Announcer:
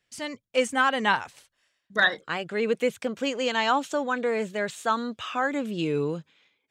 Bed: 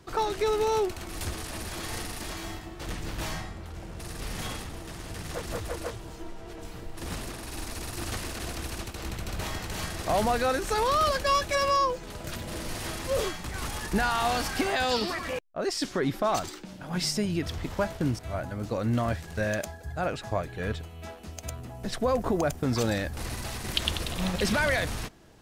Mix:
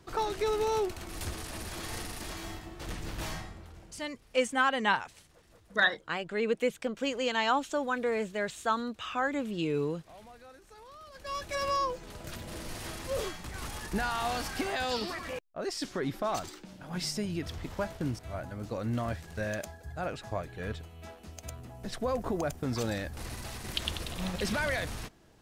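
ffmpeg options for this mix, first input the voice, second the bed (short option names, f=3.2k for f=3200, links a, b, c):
-filter_complex "[0:a]adelay=3800,volume=-4dB[a];[1:a]volume=17.5dB,afade=t=out:st=3.3:d=0.81:silence=0.0707946,afade=t=in:st=11.11:d=0.58:silence=0.0891251[b];[a][b]amix=inputs=2:normalize=0"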